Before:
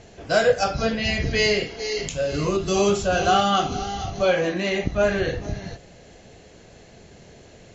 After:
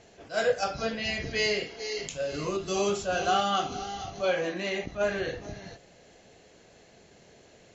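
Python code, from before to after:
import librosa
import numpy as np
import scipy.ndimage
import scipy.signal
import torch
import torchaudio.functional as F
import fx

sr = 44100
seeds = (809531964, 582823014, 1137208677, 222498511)

y = fx.low_shelf(x, sr, hz=160.0, db=-10.5)
y = fx.attack_slew(y, sr, db_per_s=260.0)
y = y * 10.0 ** (-6.0 / 20.0)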